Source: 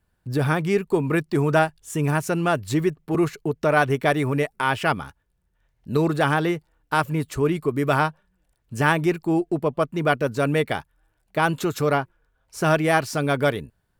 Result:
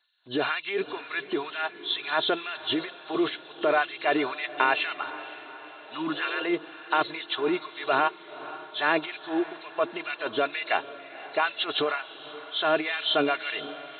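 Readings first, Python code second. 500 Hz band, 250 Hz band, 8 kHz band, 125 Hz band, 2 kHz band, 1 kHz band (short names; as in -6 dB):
-6.5 dB, -8.5 dB, under -40 dB, -26.0 dB, -2.5 dB, -4.0 dB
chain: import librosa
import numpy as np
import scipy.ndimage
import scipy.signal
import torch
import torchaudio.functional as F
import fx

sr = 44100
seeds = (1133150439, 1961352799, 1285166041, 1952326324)

p1 = fx.freq_compress(x, sr, knee_hz=2600.0, ratio=4.0)
p2 = p1 + 0.41 * np.pad(p1, (int(2.9 * sr / 1000.0), 0))[:len(p1)]
p3 = fx.over_compress(p2, sr, threshold_db=-23.0, ratio=-0.5)
p4 = p2 + (p3 * 10.0 ** (2.5 / 20.0))
p5 = fx.filter_lfo_highpass(p4, sr, shape='sine', hz=2.1, low_hz=360.0, high_hz=2400.0, q=0.95)
p6 = p5 + fx.echo_diffused(p5, sr, ms=510, feedback_pct=55, wet_db=-15, dry=0)
p7 = fx.spec_repair(p6, sr, seeds[0], start_s=5.8, length_s=0.6, low_hz=330.0, high_hz=850.0, source='both')
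y = p7 * 10.0 ** (-7.0 / 20.0)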